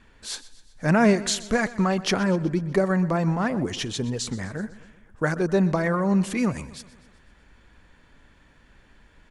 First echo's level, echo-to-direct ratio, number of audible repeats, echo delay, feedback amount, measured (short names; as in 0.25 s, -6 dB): -18.0 dB, -16.5 dB, 4, 0.125 s, 56%